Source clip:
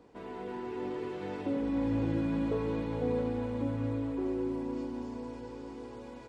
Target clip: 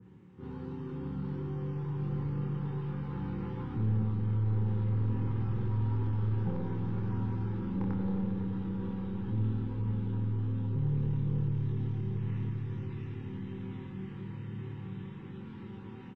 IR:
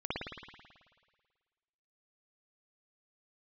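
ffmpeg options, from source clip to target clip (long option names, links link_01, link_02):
-filter_complex "[0:a]highpass=250,asetrate=17155,aresample=44100,aeval=exprs='0.0891*(cos(1*acos(clip(val(0)/0.0891,-1,1)))-cos(1*PI/2))+0.0251*(cos(3*acos(clip(val(0)/0.0891,-1,1)))-cos(3*PI/2))+0.02*(cos(5*acos(clip(val(0)/0.0891,-1,1)))-cos(5*PI/2))+0.00631*(cos(6*acos(clip(val(0)/0.0891,-1,1)))-cos(6*PI/2))+0.00224*(cos(8*acos(clip(val(0)/0.0891,-1,1)))-cos(8*PI/2))':channel_layout=same,asuperstop=centerf=650:order=20:qfactor=3.1,asplit=2[link_01][link_02];[link_02]adelay=27,volume=-5dB[link_03];[link_01][link_03]amix=inputs=2:normalize=0,asplit=2[link_04][link_05];[1:a]atrim=start_sample=2205[link_06];[link_05][link_06]afir=irnorm=-1:irlink=0,volume=-14.5dB[link_07];[link_04][link_07]amix=inputs=2:normalize=0,adynamicequalizer=threshold=0.00112:dfrequency=2200:dqfactor=0.7:tfrequency=2200:tqfactor=0.7:attack=5:release=100:ratio=0.375:range=2.5:mode=boostabove:tftype=highshelf"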